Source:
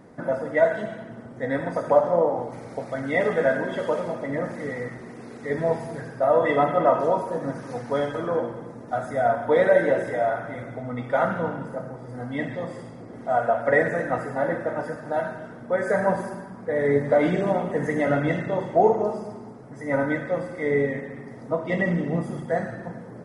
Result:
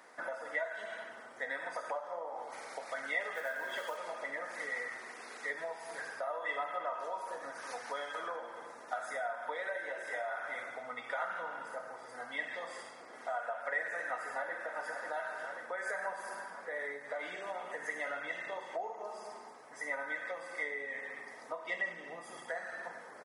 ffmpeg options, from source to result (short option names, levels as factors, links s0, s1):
-filter_complex "[0:a]asettb=1/sr,asplit=3[s0][s1][s2];[s0]atrim=end=3.344[s3];[s1]atrim=start=3.34:end=3.97,asetpts=PTS-STARTPTS,afade=t=in:d=0.004:c=qsin,afade=t=out:st=0.626:d=0.004:c=qsin,acrusher=bits=8:mode=log:mix=0:aa=0.000001[s4];[s2]atrim=start=3.966[s5];[s3][s4]acrossfade=d=0.004:c1=hsin:c2=qsin[s6];[s6][s5]acrossfade=d=0.004:c1=qsin:c2=hsin,asplit=2[s7][s8];[s8]afade=t=in:st=14.13:d=0.01,afade=t=out:st=14.92:d=0.01,aecho=0:1:540|1080|1620|2160|2700|3240|3780|4320:0.251189|0.163273|0.106127|0.0689827|0.0448387|0.0291452|0.0189444|0.0123138[s9];[s7][s9]amix=inputs=2:normalize=0,asettb=1/sr,asplit=3[s10][s11][s12];[s10]atrim=end=18.324[s13];[s11]atrim=start=18.32:end=22.48,asetpts=PTS-STARTPTS,afade=t=in:d=0.004:c=qsin,afade=t=out:st=4.156:d=0.004:c=qsin,bandreject=f=1400:w=11[s14];[s12]atrim=start=22.476[s15];[s13][s14]acrossfade=d=0.004:c1=hsin:c2=qsin[s16];[s16][s15]acrossfade=d=0.004:c1=qsin:c2=hsin,acompressor=threshold=0.0316:ratio=6,highpass=1100,volume=1.41"